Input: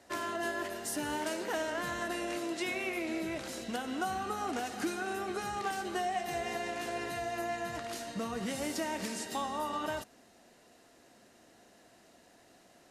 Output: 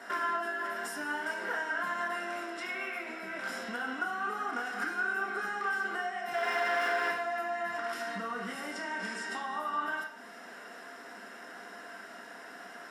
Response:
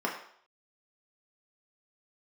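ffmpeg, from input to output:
-filter_complex "[0:a]acompressor=threshold=-48dB:ratio=8,asettb=1/sr,asplit=3[link_01][link_02][link_03];[link_01]atrim=end=6.344[link_04];[link_02]atrim=start=6.34:end=7.11,asetpts=PTS-STARTPTS,afade=type=in:duration=0.004:curve=qsin,afade=type=out:start_time=0.766:duration=0.004:curve=qsin,asplit=2[link_05][link_06];[link_06]highpass=frequency=720:poles=1,volume=34dB,asoftclip=type=tanh:threshold=-40.5dB[link_07];[link_05][link_07]amix=inputs=2:normalize=0,lowpass=frequency=3700:poles=1,volume=-6dB[link_08];[link_03]atrim=start=7.106[link_09];[link_04][link_08]acrossfade=duration=0.004:curve1=hsin:curve2=qsin[link_10];[link_10][link_09]acrossfade=duration=0.004:curve1=qsin:curve2=hsin,equalizer=frequency=1500:width_type=o:width=0.35:gain=10,asettb=1/sr,asplit=3[link_11][link_12][link_13];[link_11]atrim=end=8.714[link_14];[link_12]atrim=start=8.71:end=9.42,asetpts=PTS-STARTPTS,afade=type=in:duration=0.004:curve=qsin,afade=type=out:start_time=0.706:duration=0.004:curve=qsin,lowpass=frequency=10000:width=0.5412,lowpass=frequency=10000:width=1.3066[link_15];[link_13]atrim=start=9.416[link_16];[link_14][link_15]acrossfade=duration=0.004:curve1=hsin:curve2=qsin[link_17];[link_17][link_16]acrossfade=duration=0.004:curve1=qsin:curve2=hsin,tiltshelf=frequency=830:gain=-6.5[link_18];[1:a]atrim=start_sample=2205[link_19];[link_18][link_19]afir=irnorm=-1:irlink=0,volume=3dB"

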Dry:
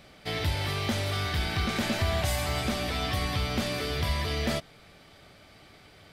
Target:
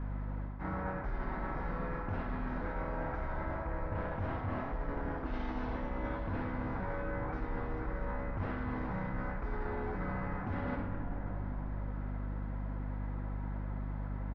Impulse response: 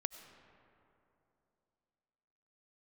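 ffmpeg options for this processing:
-filter_complex "[0:a]adynamicequalizer=threshold=0.00282:dfrequency=460:dqfactor=7.8:tfrequency=460:tqfactor=7.8:attack=5:release=100:ratio=0.375:range=2.5:mode=boostabove:tftype=bell,asetrate=18846,aresample=44100[link_01];[1:a]atrim=start_sample=2205[link_02];[link_01][link_02]afir=irnorm=-1:irlink=0,acontrast=81,lowpass=1500,aecho=1:1:55|73:0.316|0.266,asplit=2[link_03][link_04];[link_04]asetrate=37084,aresample=44100,atempo=1.18921,volume=-8dB[link_05];[link_03][link_05]amix=inputs=2:normalize=0,aeval=exprs='val(0)+0.0178*(sin(2*PI*50*n/s)+sin(2*PI*2*50*n/s)/2+sin(2*PI*3*50*n/s)/3+sin(2*PI*4*50*n/s)/4+sin(2*PI*5*50*n/s)/5)':channel_layout=same,areverse,acompressor=threshold=-33dB:ratio=12,areverse"

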